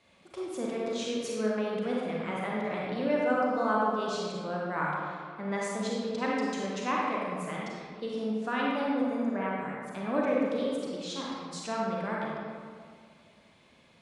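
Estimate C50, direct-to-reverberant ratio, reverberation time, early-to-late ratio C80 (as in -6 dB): -3.0 dB, -4.5 dB, 2.1 s, 0.0 dB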